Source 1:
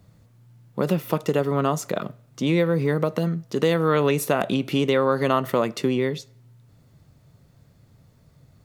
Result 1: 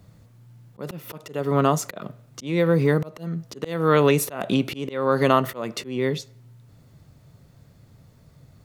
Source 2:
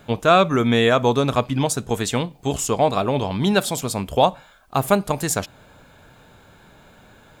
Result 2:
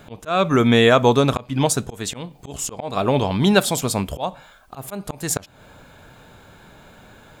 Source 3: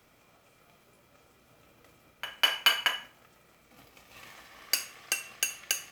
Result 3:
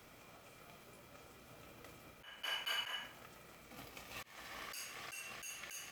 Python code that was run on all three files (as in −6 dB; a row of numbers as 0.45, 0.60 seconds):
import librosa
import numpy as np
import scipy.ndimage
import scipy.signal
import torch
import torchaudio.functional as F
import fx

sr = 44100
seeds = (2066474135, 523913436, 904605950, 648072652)

y = fx.auto_swell(x, sr, attack_ms=281.0)
y = y * 10.0 ** (3.0 / 20.0)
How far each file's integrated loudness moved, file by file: 0.0, +0.5, −16.0 LU